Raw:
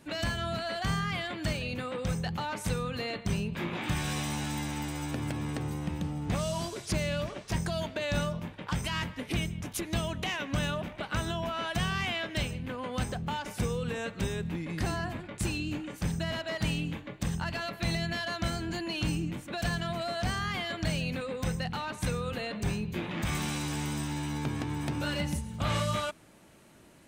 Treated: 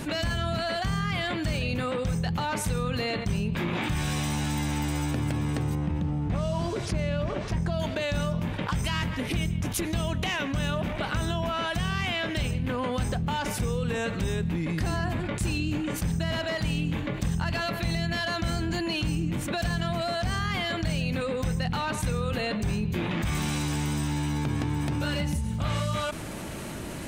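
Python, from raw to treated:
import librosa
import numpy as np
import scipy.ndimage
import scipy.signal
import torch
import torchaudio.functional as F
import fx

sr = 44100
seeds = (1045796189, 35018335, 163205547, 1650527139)

y = fx.lowpass(x, sr, hz=1900.0, slope=6, at=(5.75, 7.8))
y = fx.rider(y, sr, range_db=10, speed_s=0.5)
y = fx.low_shelf(y, sr, hz=130.0, db=7.0)
y = fx.env_flatten(y, sr, amount_pct=70)
y = F.gain(torch.from_numpy(y), -3.5).numpy()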